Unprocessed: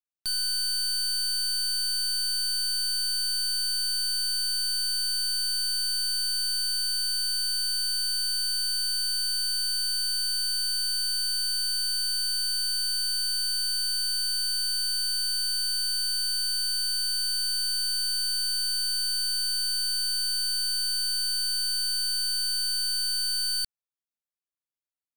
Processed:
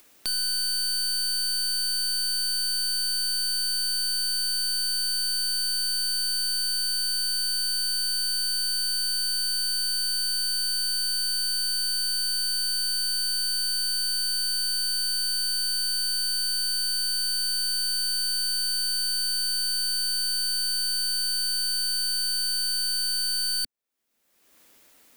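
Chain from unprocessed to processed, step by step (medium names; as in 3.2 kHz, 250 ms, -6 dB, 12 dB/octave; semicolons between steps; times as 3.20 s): graphic EQ 125/250/500/2000 Hz -6/+8/+5/+3 dB; upward compressor, threshold -31 dBFS; treble shelf 11 kHz +3.5 dB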